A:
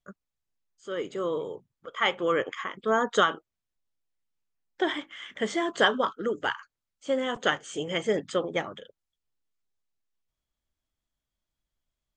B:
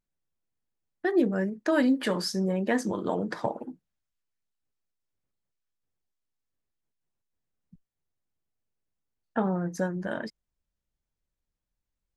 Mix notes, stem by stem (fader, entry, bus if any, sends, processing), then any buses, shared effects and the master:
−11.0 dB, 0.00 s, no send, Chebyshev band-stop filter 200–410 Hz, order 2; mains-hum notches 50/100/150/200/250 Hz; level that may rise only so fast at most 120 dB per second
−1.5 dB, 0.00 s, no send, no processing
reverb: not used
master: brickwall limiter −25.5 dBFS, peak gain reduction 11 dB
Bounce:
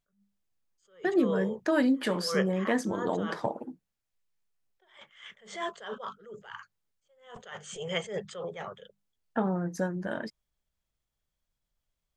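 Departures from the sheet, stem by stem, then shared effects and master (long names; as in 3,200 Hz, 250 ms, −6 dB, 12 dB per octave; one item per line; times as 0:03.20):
stem A −11.0 dB → 0.0 dB
master: missing brickwall limiter −25.5 dBFS, peak gain reduction 11 dB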